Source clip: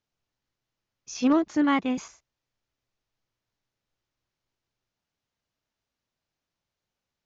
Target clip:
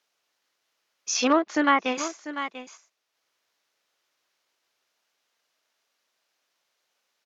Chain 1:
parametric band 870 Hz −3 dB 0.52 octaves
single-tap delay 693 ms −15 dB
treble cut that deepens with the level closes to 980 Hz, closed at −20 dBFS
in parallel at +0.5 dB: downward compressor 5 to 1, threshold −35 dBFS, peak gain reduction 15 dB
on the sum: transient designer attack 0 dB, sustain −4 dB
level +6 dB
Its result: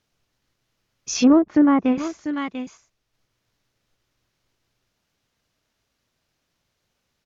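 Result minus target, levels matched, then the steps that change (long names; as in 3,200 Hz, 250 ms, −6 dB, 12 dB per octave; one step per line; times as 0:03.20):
500 Hz band −3.5 dB
add first: high-pass filter 570 Hz 12 dB per octave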